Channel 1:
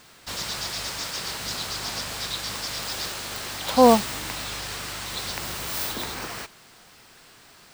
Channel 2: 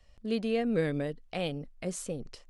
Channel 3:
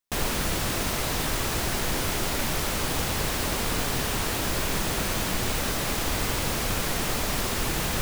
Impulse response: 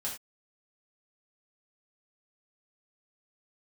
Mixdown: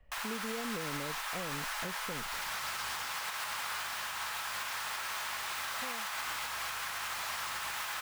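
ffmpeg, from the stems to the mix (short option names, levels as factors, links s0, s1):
-filter_complex "[0:a]acompressor=threshold=0.0251:ratio=4,adelay=2050,volume=0.891,afade=t=out:st=2.88:d=0.46:silence=0.237137[s0];[1:a]lowpass=f=2500:w=0.5412,lowpass=f=2500:w=1.3066,acompressor=threshold=0.0251:ratio=6,volume=0.944,asplit=2[s1][s2];[2:a]highpass=f=980:w=0.5412,highpass=f=980:w=1.3066,highshelf=f=2500:g=-11.5,volume=0.944,asplit=2[s3][s4];[s4]volume=0.422[s5];[s2]apad=whole_len=431540[s6];[s0][s6]sidechaincompress=threshold=0.00355:ratio=3:attack=16:release=1450[s7];[3:a]atrim=start_sample=2205[s8];[s5][s8]afir=irnorm=-1:irlink=0[s9];[s7][s1][s3][s9]amix=inputs=4:normalize=0,alimiter=level_in=1.5:limit=0.0631:level=0:latency=1:release=165,volume=0.668"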